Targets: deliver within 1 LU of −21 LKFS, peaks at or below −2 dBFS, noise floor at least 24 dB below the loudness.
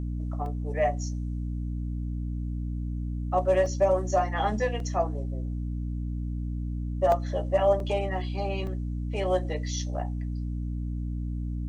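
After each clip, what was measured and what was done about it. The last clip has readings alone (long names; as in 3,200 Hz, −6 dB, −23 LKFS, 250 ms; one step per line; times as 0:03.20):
number of dropouts 6; longest dropout 2.0 ms; mains hum 60 Hz; hum harmonics up to 300 Hz; level of the hum −29 dBFS; integrated loudness −29.5 LKFS; sample peak −11.5 dBFS; target loudness −21.0 LKFS
→ repair the gap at 0:00.46/0:03.66/0:04.80/0:07.12/0:07.80/0:08.67, 2 ms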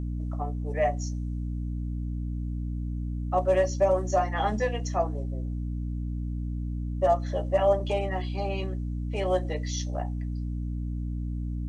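number of dropouts 0; mains hum 60 Hz; hum harmonics up to 300 Hz; level of the hum −29 dBFS
→ mains-hum notches 60/120/180/240/300 Hz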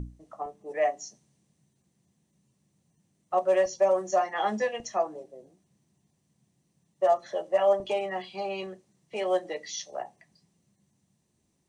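mains hum none found; integrated loudness −28.5 LKFS; sample peak −13.5 dBFS; target loudness −21.0 LKFS
→ level +7.5 dB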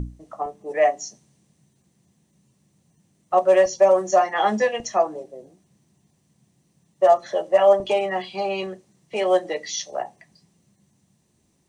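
integrated loudness −21.0 LKFS; sample peak −6.0 dBFS; background noise floor −67 dBFS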